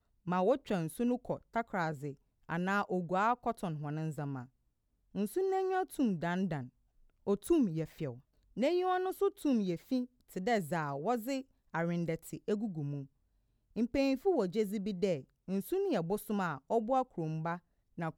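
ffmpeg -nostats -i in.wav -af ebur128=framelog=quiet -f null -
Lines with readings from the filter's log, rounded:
Integrated loudness:
  I:         -34.9 LUFS
  Threshold: -45.2 LUFS
Loudness range:
  LRA:         2.5 LU
  Threshold: -55.4 LUFS
  LRA low:   -36.7 LUFS
  LRA high:  -34.2 LUFS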